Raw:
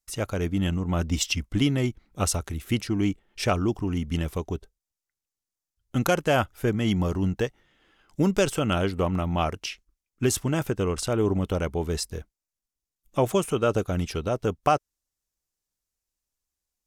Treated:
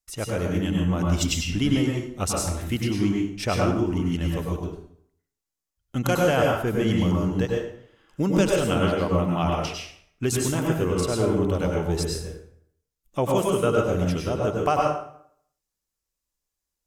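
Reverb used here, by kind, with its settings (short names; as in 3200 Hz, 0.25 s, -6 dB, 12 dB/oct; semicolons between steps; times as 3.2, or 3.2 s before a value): plate-style reverb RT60 0.65 s, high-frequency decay 0.75×, pre-delay 85 ms, DRR -1.5 dB; gain -2 dB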